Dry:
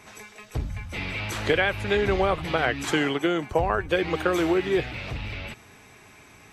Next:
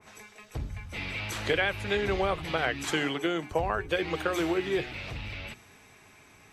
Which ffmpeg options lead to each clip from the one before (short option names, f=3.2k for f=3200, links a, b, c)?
-af "bandreject=f=60:t=h:w=6,bandreject=f=120:t=h:w=6,bandreject=f=180:t=h:w=6,bandreject=f=240:t=h:w=6,bandreject=f=300:t=h:w=6,bandreject=f=360:t=h:w=6,bandreject=f=420:t=h:w=6,adynamicequalizer=threshold=0.0112:dfrequency=2000:dqfactor=0.7:tfrequency=2000:tqfactor=0.7:attack=5:release=100:ratio=0.375:range=1.5:mode=boostabove:tftype=highshelf,volume=-5dB"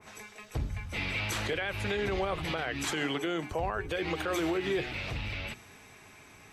-af "alimiter=limit=-24dB:level=0:latency=1:release=62,volume=2dB"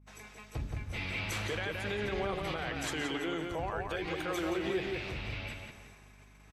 -filter_complex "[0:a]asplit=2[a][b];[b]adelay=173,lowpass=f=4k:p=1,volume=-3.5dB,asplit=2[c][d];[d]adelay=173,lowpass=f=4k:p=1,volume=0.33,asplit=2[e][f];[f]adelay=173,lowpass=f=4k:p=1,volume=0.33,asplit=2[g][h];[h]adelay=173,lowpass=f=4k:p=1,volume=0.33[i];[a][c][e][g][i]amix=inputs=5:normalize=0,agate=range=-23dB:threshold=-51dB:ratio=16:detection=peak,aeval=exprs='val(0)+0.00224*(sin(2*PI*50*n/s)+sin(2*PI*2*50*n/s)/2+sin(2*PI*3*50*n/s)/3+sin(2*PI*4*50*n/s)/4+sin(2*PI*5*50*n/s)/5)':c=same,volume=-4.5dB"